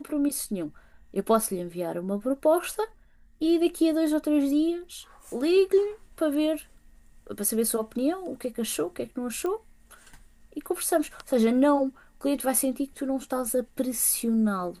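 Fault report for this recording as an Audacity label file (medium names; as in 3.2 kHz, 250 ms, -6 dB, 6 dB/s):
9.460000	9.460000	pop -20 dBFS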